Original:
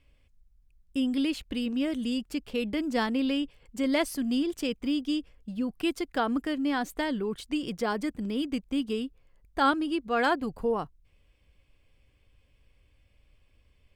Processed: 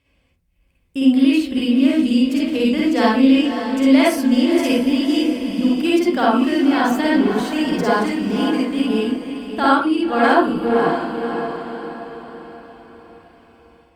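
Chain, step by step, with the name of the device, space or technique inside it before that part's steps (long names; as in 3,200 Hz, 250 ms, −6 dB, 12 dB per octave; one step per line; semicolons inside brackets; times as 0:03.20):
0:08.30–0:08.71: high-pass filter 230 Hz 12 dB per octave
feedback delay with all-pass diffusion 569 ms, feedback 45%, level −7.5 dB
far-field microphone of a smart speaker (convolution reverb RT60 0.35 s, pre-delay 47 ms, DRR −5 dB; high-pass filter 85 Hz 12 dB per octave; automatic gain control gain up to 4 dB; level +1.5 dB; Opus 48 kbit/s 48,000 Hz)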